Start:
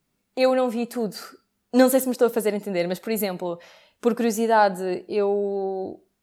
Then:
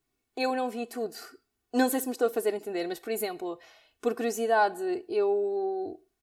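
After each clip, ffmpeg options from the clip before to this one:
-af "aecho=1:1:2.7:0.78,volume=-7.5dB"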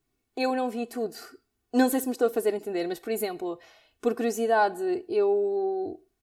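-af "lowshelf=f=370:g=5.5"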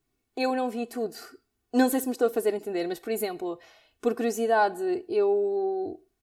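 -af anull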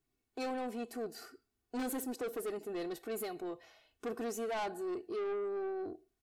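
-af "asoftclip=type=tanh:threshold=-27.5dB,volume=-6.5dB"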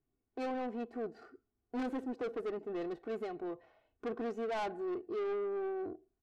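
-af "adynamicsmooth=sensitivity=6:basefreq=1.3k,volume=1dB"

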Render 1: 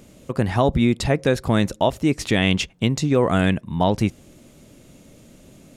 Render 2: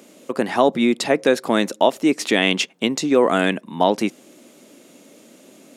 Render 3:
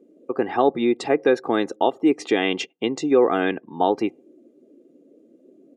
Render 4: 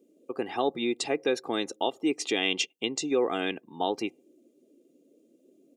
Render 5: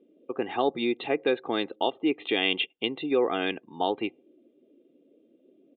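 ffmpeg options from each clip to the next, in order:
-af "highpass=f=240:w=0.5412,highpass=f=240:w=1.3066,volume=3.5dB"
-af "highshelf=f=2.1k:g=-9.5,afftdn=nr=24:nf=-43,aecho=1:1:2.5:0.57,volume=-2dB"
-af "aexciter=amount=4.4:drive=2.6:freq=2.4k,volume=-9dB"
-af "asubboost=boost=2.5:cutoff=82,aresample=8000,aresample=44100,volume=2dB"

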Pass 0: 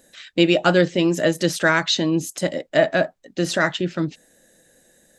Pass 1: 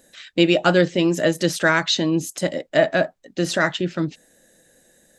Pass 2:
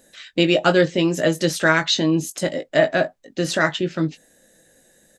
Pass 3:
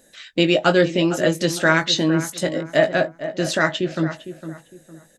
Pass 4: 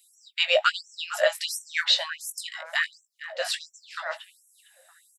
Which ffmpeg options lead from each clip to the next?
-af anull
-filter_complex "[0:a]asplit=2[a][b];[b]adelay=19,volume=-8.5dB[c];[a][c]amix=inputs=2:normalize=0"
-filter_complex "[0:a]asplit=2[a][b];[b]adelay=457,lowpass=f=1.8k:p=1,volume=-11dB,asplit=2[c][d];[d]adelay=457,lowpass=f=1.8k:p=1,volume=0.31,asplit=2[e][f];[f]adelay=457,lowpass=f=1.8k:p=1,volume=0.31[g];[a][c][e][g]amix=inputs=4:normalize=0"
-af "equalizer=f=6.4k:w=5.1:g=-12.5,afftfilt=real='re*gte(b*sr/1024,500*pow(5700/500,0.5+0.5*sin(2*PI*1.4*pts/sr)))':imag='im*gte(b*sr/1024,500*pow(5700/500,0.5+0.5*sin(2*PI*1.4*pts/sr)))':win_size=1024:overlap=0.75"

